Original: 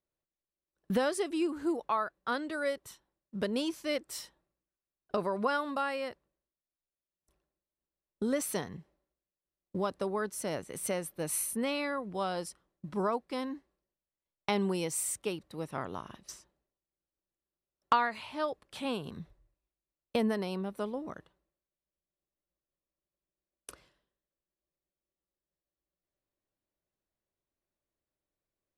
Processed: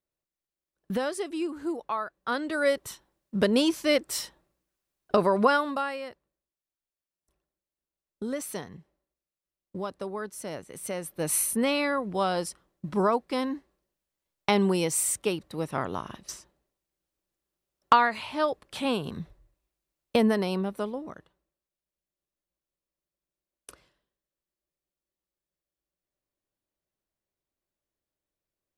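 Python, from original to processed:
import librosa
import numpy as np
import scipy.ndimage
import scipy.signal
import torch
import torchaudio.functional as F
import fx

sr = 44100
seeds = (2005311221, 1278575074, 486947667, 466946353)

y = fx.gain(x, sr, db=fx.line((2.06, 0.0), (2.76, 9.5), (5.44, 9.5), (6.05, -1.5), (10.86, -1.5), (11.3, 7.0), (20.6, 7.0), (21.15, 0.0)))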